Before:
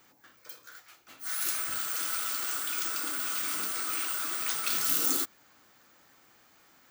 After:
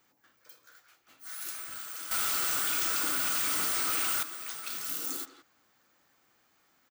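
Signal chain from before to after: speakerphone echo 170 ms, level -10 dB; 2.11–4.23 s: waveshaping leveller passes 5; trim -8 dB

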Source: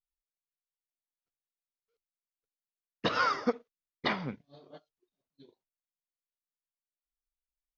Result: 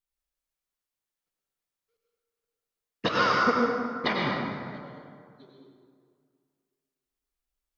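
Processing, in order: plate-style reverb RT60 2.1 s, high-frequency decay 0.55×, pre-delay 80 ms, DRR -2 dB; trim +2.5 dB

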